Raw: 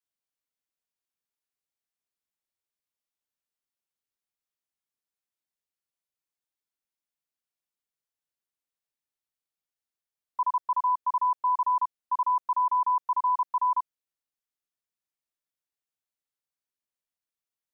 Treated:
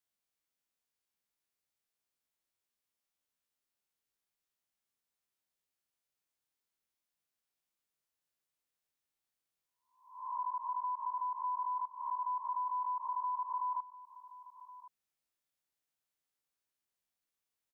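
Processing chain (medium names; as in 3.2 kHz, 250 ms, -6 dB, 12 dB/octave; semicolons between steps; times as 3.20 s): reverse spectral sustain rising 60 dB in 0.54 s; compression 2.5:1, threshold -41 dBFS, peak gain reduction 12 dB; on a send: delay 1073 ms -16.5 dB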